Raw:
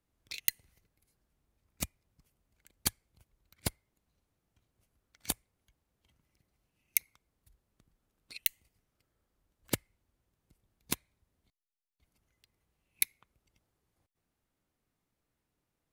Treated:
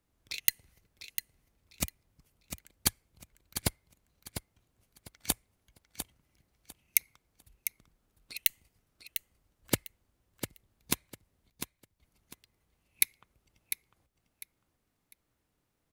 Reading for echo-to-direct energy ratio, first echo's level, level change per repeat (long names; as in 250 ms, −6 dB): −8.5 dB, −9.0 dB, −12.5 dB